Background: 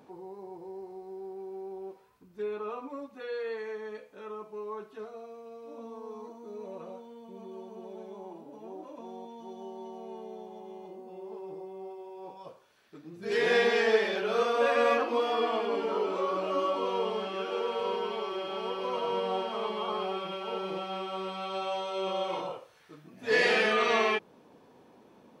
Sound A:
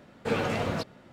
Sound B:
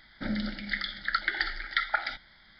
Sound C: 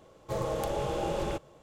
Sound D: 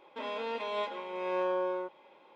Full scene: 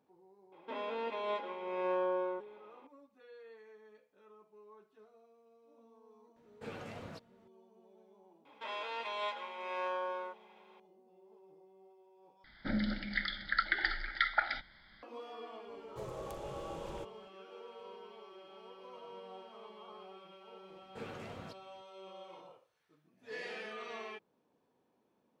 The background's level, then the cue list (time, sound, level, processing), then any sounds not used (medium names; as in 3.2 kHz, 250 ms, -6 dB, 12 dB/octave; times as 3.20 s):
background -19 dB
0.52 s: add D -2 dB + treble shelf 4.5 kHz -11.5 dB
6.36 s: add A -17.5 dB
8.45 s: add D -0.5 dB + high-pass 790 Hz
12.44 s: replace with B -2 dB + low-pass 3.6 kHz 6 dB/octave
15.67 s: add C -13 dB
20.70 s: add A -18 dB